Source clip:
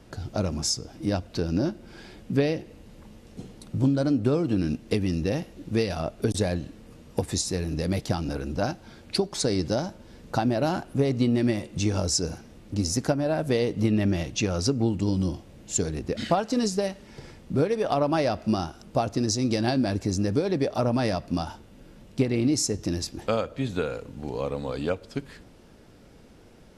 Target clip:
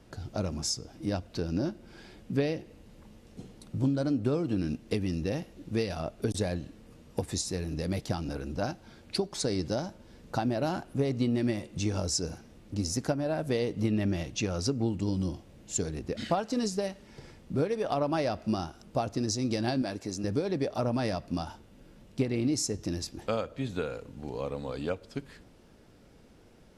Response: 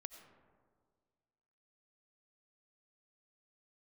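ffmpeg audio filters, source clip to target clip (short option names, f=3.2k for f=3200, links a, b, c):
-filter_complex "[0:a]asettb=1/sr,asplit=3[a][b][c];[a]atrim=end=19.824[d];[b]atrim=start=19.82:end=20.24,asetpts=PTS-STARTPTS,afade=t=in:d=0.004:c=qsin,afade=t=out:st=0.416:d=0.004:c=qsin,highpass=f=310:p=1[e];[c]atrim=start=20.236[f];[d][e]acrossfade=d=0.004:c1=hsin:c2=qsin[g];[g][f]acrossfade=d=0.004:c1=qsin:c2=hsin,volume=-5dB"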